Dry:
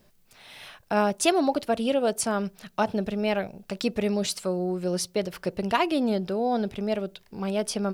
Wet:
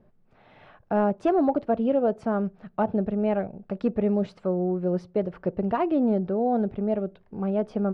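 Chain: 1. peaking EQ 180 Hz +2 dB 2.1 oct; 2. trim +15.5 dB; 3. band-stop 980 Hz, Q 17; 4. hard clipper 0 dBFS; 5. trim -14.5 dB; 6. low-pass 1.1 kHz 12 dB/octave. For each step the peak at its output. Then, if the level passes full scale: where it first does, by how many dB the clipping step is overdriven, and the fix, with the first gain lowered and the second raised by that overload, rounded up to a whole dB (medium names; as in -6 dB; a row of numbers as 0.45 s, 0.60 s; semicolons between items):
-7.0 dBFS, +8.5 dBFS, +8.5 dBFS, 0.0 dBFS, -14.5 dBFS, -14.0 dBFS; step 2, 8.5 dB; step 2 +6.5 dB, step 5 -5.5 dB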